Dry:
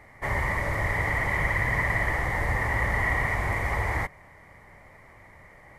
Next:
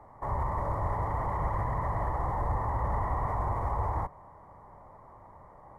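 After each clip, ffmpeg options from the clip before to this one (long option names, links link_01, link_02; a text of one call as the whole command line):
ffmpeg -i in.wav -filter_complex "[0:a]highshelf=frequency=1500:width_type=q:width=3:gain=-13.5,acrossover=split=130[link_01][link_02];[link_02]alimiter=limit=-24dB:level=0:latency=1:release=31[link_03];[link_01][link_03]amix=inputs=2:normalize=0,volume=-2dB" out.wav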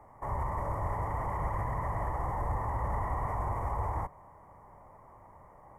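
ffmpeg -i in.wav -af "aexciter=amount=1.4:drive=2.2:freq=2100,volume=-2.5dB" out.wav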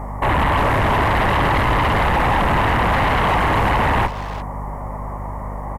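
ffmpeg -i in.wav -filter_complex "[0:a]aeval=exprs='val(0)+0.00282*(sin(2*PI*50*n/s)+sin(2*PI*2*50*n/s)/2+sin(2*PI*3*50*n/s)/3+sin(2*PI*4*50*n/s)/4+sin(2*PI*5*50*n/s)/5)':channel_layout=same,aeval=exprs='0.0841*sin(PI/2*3.55*val(0)/0.0841)':channel_layout=same,asplit=2[link_01][link_02];[link_02]adelay=350,highpass=300,lowpass=3400,asoftclip=type=hard:threshold=-29.5dB,volume=-9dB[link_03];[link_01][link_03]amix=inputs=2:normalize=0,volume=8dB" out.wav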